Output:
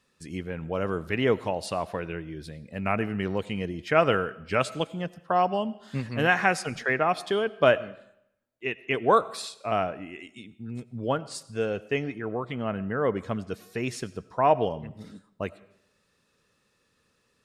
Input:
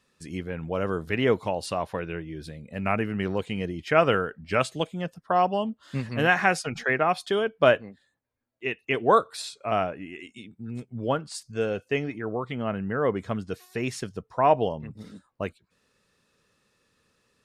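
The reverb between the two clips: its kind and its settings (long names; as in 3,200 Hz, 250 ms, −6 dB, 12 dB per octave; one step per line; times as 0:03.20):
comb and all-pass reverb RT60 0.76 s, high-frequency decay 0.95×, pre-delay 50 ms, DRR 19 dB
level −1 dB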